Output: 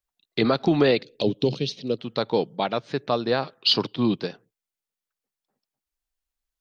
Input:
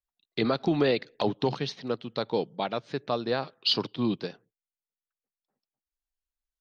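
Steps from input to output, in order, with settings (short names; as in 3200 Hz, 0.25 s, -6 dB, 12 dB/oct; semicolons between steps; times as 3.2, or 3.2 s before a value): 1.02–1.99 band shelf 1200 Hz -15.5 dB; gain +5 dB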